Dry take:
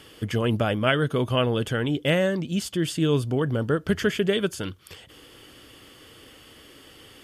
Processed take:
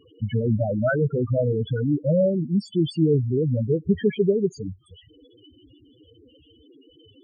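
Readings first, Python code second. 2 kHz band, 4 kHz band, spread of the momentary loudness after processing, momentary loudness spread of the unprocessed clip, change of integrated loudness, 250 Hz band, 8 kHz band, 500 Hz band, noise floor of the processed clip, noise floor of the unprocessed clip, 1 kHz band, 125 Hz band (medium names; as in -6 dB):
-6.5 dB, -11.5 dB, 5 LU, 6 LU, +1.5 dB, +2.0 dB, under -15 dB, +2.0 dB, -57 dBFS, -51 dBFS, no reading, +3.0 dB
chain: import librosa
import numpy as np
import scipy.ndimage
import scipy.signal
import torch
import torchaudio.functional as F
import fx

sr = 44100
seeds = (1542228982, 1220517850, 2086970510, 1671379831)

y = fx.spec_topn(x, sr, count=4)
y = y * 10.0 ** (4.5 / 20.0)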